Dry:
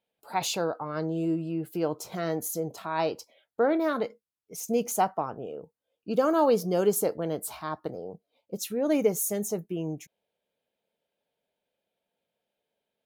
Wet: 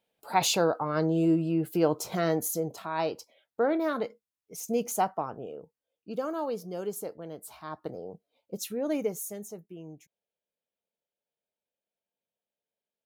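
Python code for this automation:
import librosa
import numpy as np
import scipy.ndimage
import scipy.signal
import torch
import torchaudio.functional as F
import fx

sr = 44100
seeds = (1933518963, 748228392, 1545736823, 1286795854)

y = fx.gain(x, sr, db=fx.line((2.18, 4.0), (2.94, -2.0), (5.43, -2.0), (6.48, -10.5), (7.41, -10.5), (7.92, -2.0), (8.67, -2.0), (9.57, -12.0)))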